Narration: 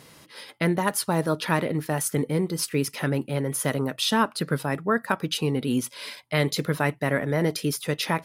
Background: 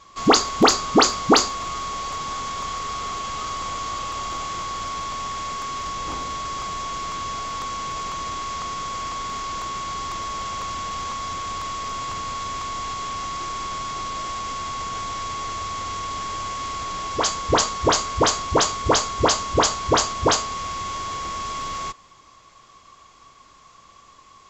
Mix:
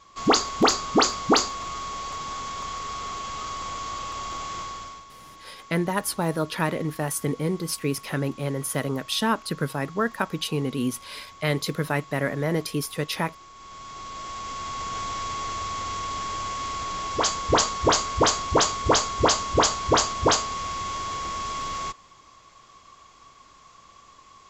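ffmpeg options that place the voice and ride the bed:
-filter_complex "[0:a]adelay=5100,volume=0.841[s0];[1:a]volume=4.22,afade=t=out:st=4.59:d=0.46:silence=0.199526,afade=t=in:st=13.54:d=1.49:silence=0.149624[s1];[s0][s1]amix=inputs=2:normalize=0"

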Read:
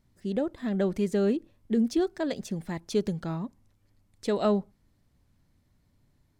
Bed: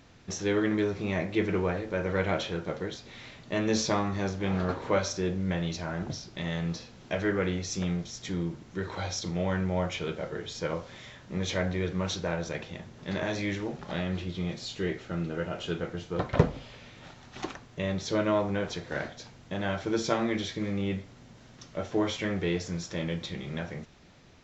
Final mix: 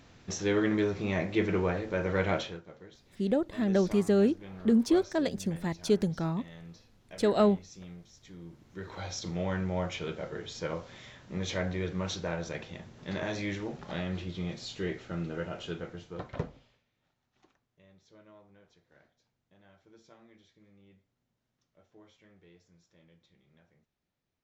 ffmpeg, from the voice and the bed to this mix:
-filter_complex "[0:a]adelay=2950,volume=1.12[s0];[1:a]volume=4.47,afade=t=out:st=2.34:d=0.28:silence=0.158489,afade=t=in:st=8.4:d=0.91:silence=0.211349,afade=t=out:st=15.37:d=1.47:silence=0.0446684[s1];[s0][s1]amix=inputs=2:normalize=0"

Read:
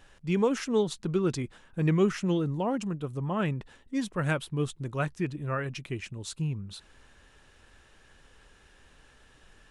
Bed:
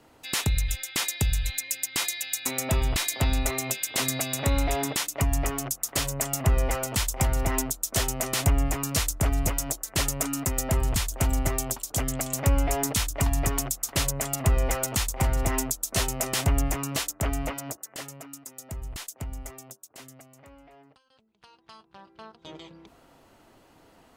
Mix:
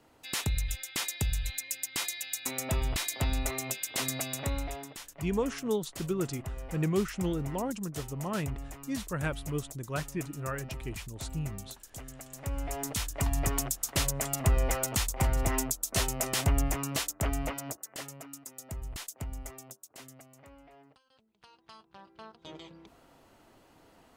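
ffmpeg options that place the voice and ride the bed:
-filter_complex "[0:a]adelay=4950,volume=0.596[s0];[1:a]volume=2.66,afade=t=out:st=4.27:d=0.61:silence=0.266073,afade=t=in:st=12.32:d=1.27:silence=0.199526[s1];[s0][s1]amix=inputs=2:normalize=0"

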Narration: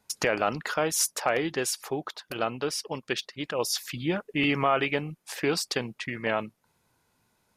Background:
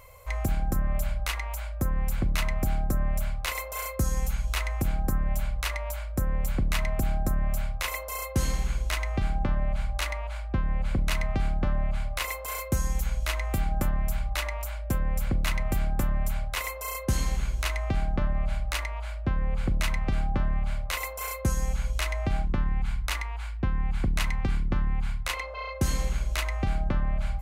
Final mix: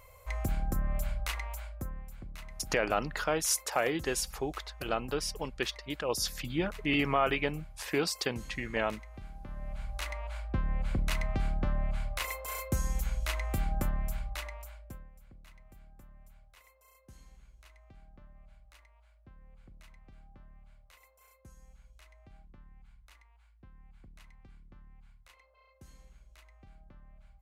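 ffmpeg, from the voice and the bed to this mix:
-filter_complex "[0:a]adelay=2500,volume=0.668[s0];[1:a]volume=2.99,afade=t=out:st=1.43:d=0.63:silence=0.199526,afade=t=in:st=9.44:d=0.93:silence=0.188365,afade=t=out:st=13.79:d=1.32:silence=0.0595662[s1];[s0][s1]amix=inputs=2:normalize=0"

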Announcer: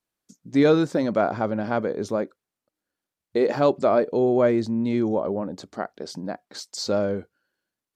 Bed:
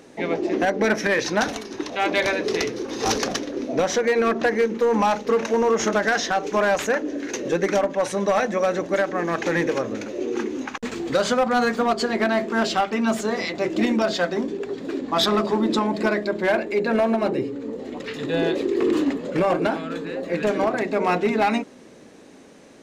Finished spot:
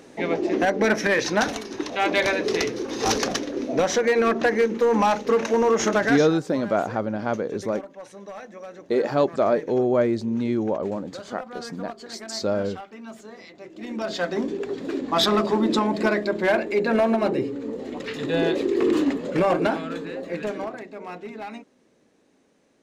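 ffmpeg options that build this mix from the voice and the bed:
-filter_complex "[0:a]adelay=5550,volume=0.891[s0];[1:a]volume=7.94,afade=t=out:st=6.02:d=0.28:silence=0.125893,afade=t=in:st=13.8:d=0.67:silence=0.125893,afade=t=out:st=19.73:d=1.15:silence=0.16788[s1];[s0][s1]amix=inputs=2:normalize=0"

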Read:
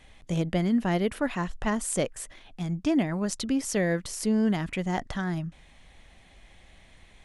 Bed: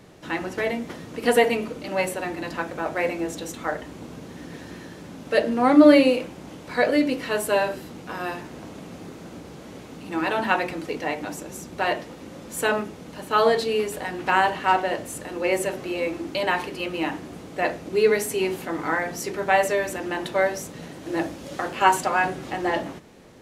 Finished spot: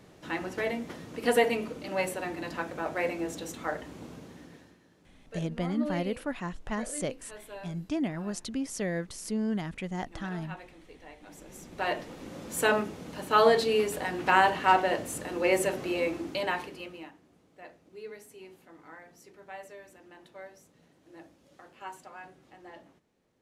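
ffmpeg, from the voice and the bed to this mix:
-filter_complex "[0:a]adelay=5050,volume=0.501[s0];[1:a]volume=5.62,afade=t=out:st=4.06:d=0.71:silence=0.141254,afade=t=in:st=11.2:d=1.21:silence=0.0944061,afade=t=out:st=15.92:d=1.2:silence=0.0749894[s1];[s0][s1]amix=inputs=2:normalize=0"

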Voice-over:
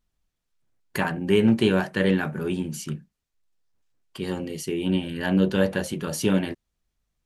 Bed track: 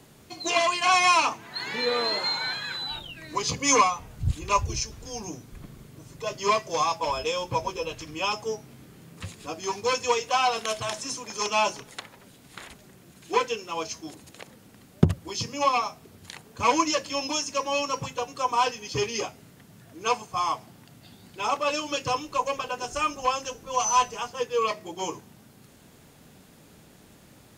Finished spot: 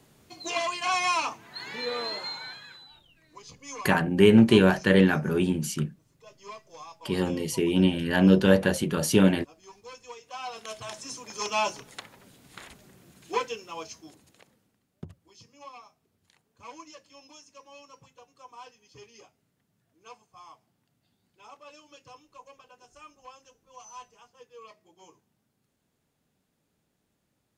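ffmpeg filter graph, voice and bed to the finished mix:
-filter_complex "[0:a]adelay=2900,volume=1.33[s0];[1:a]volume=3.55,afade=t=out:st=2.04:d=0.86:silence=0.199526,afade=t=in:st=10.22:d=1.34:silence=0.141254,afade=t=out:st=13.05:d=1.75:silence=0.1[s1];[s0][s1]amix=inputs=2:normalize=0"

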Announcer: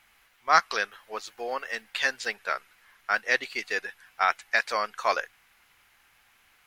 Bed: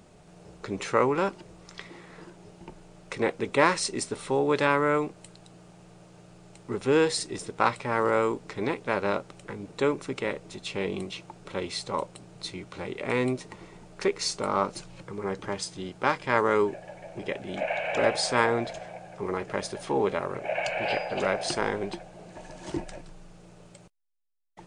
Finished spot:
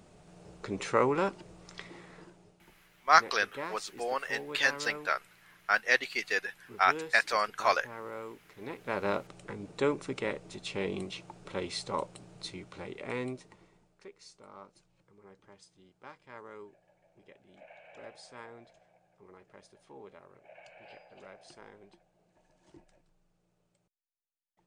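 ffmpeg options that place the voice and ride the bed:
-filter_complex "[0:a]adelay=2600,volume=0.891[s0];[1:a]volume=3.55,afade=t=out:st=2:d=0.63:silence=0.188365,afade=t=in:st=8.59:d=0.51:silence=0.199526,afade=t=out:st=12.21:d=1.8:silence=0.0891251[s1];[s0][s1]amix=inputs=2:normalize=0"

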